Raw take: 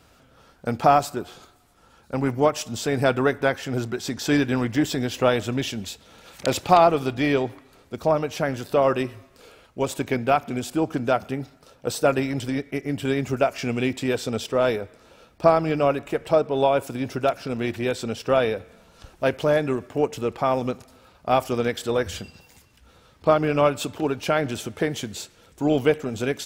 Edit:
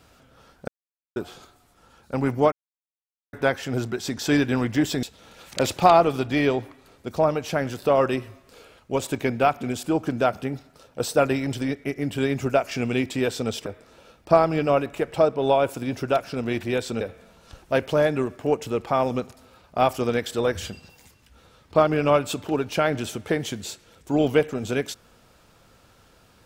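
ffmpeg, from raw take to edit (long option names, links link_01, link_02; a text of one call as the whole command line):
ffmpeg -i in.wav -filter_complex "[0:a]asplit=8[link_01][link_02][link_03][link_04][link_05][link_06][link_07][link_08];[link_01]atrim=end=0.68,asetpts=PTS-STARTPTS,afade=type=out:start_time=0.676:duration=0.004:curve=hsin[link_09];[link_02]atrim=start=0.68:end=1.16,asetpts=PTS-STARTPTS,volume=0[link_10];[link_03]atrim=start=1.16:end=2.52,asetpts=PTS-STARTPTS,afade=type=in:duration=0.004:curve=hsin,afade=type=out:start_time=1.356:duration=0.004:curve=hsin[link_11];[link_04]atrim=start=2.52:end=3.33,asetpts=PTS-STARTPTS,volume=0[link_12];[link_05]atrim=start=3.33:end=5.032,asetpts=PTS-STARTPTS,afade=type=in:duration=0.004:curve=hsin[link_13];[link_06]atrim=start=5.898:end=14.532[link_14];[link_07]atrim=start=14.788:end=18.142[link_15];[link_08]atrim=start=18.518[link_16];[link_09][link_10][link_11][link_12][link_13]concat=n=5:v=0:a=1[link_17];[link_17][link_14]acrossfade=duration=0.004:curve1=hsin:curve2=hsin[link_18];[link_18][link_15]acrossfade=duration=0.004:curve1=hsin:curve2=hsin[link_19];[link_19][link_16]acrossfade=duration=0.004:curve1=hsin:curve2=hsin" out.wav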